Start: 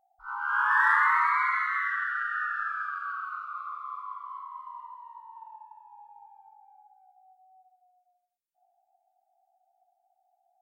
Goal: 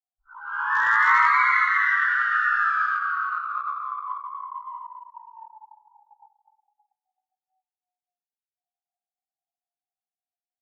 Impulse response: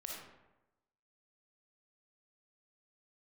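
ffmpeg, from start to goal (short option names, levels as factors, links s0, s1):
-filter_complex "[0:a]asettb=1/sr,asplit=3[s0][s1][s2];[s0]atrim=end=1.004[s3];[s1]atrim=start=1:end=2.97,asetpts=PTS-STARTPTS,afade=t=in:d=0.004:c=qsin,afade=t=out:st=1.966:d=0.004:c=qsin,highshelf=f=2300:g=6[s4];[s2]atrim=start=2.966[s5];[s3][s4]acrossfade=d=0.004:c1=hsin:c2=qsin[s6];[s6][s5]acrossfade=d=0.004:c1=qsin:c2=hsin,acrossover=split=870[s7][s8];[s7]aeval=exprs='(mod(22.4*val(0)+1,2)-1)/22.4':c=same[s9];[s8]dynaudnorm=f=260:g=7:m=5.01[s10];[s9][s10]amix=inputs=2:normalize=0,flanger=delay=15.5:depth=3.4:speed=0.78,asplit=2[s11][s12];[s12]adelay=702,lowpass=f=1500:p=1,volume=0.0944,asplit=2[s13][s14];[s14]adelay=702,lowpass=f=1500:p=1,volume=0.4,asplit=2[s15][s16];[s16]adelay=702,lowpass=f=1500:p=1,volume=0.4[s17];[s11][s13][s15][s17]amix=inputs=4:normalize=0,asplit=2[s18][s19];[1:a]atrim=start_sample=2205[s20];[s19][s20]afir=irnorm=-1:irlink=0,volume=0.355[s21];[s18][s21]amix=inputs=2:normalize=0,anlmdn=39.8,volume=0.75" -ar 16000 -c:a libvorbis -b:a 96k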